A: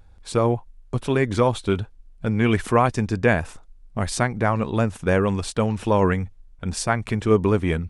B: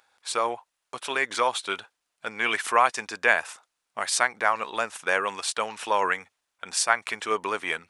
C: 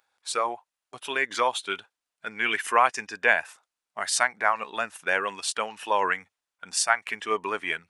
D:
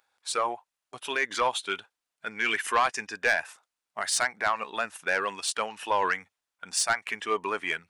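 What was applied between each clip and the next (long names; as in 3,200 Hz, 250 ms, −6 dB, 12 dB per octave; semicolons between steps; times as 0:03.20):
high-pass filter 1,000 Hz 12 dB per octave; level +4 dB
noise reduction from a noise print of the clip's start 8 dB
soft clipping −15.5 dBFS, distortion −12 dB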